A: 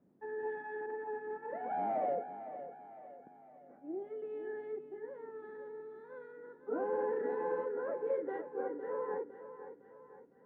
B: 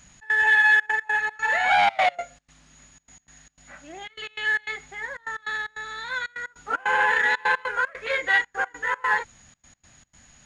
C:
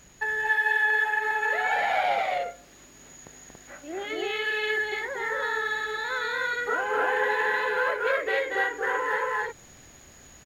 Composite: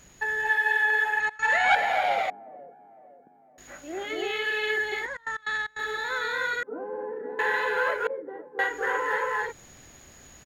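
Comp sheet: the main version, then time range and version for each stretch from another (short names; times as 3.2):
C
1.2–1.75 from B
2.3–3.58 from A
5.06–5.79 from B
6.63–7.39 from A
8.07–8.59 from A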